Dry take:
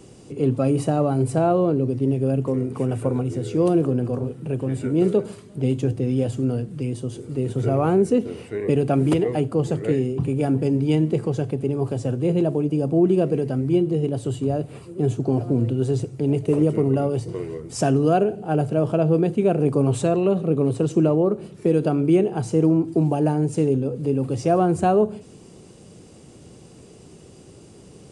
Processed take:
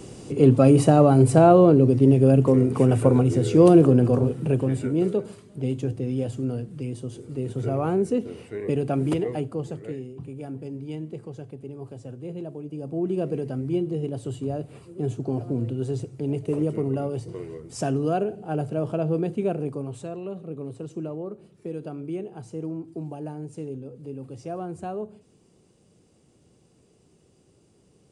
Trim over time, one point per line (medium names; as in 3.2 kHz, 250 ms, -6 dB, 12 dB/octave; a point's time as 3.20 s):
4.43 s +5 dB
5.10 s -5 dB
9.29 s -5 dB
10.08 s -14.5 dB
12.61 s -14.5 dB
13.28 s -6 dB
19.48 s -6 dB
19.90 s -14.5 dB